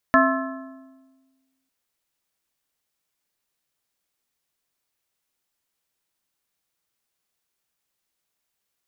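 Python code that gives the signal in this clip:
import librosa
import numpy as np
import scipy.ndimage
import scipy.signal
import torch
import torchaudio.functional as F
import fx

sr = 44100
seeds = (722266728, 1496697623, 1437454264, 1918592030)

y = fx.strike_metal(sr, length_s=1.55, level_db=-17.0, body='plate', hz=265.0, decay_s=1.49, tilt_db=0, modes=5)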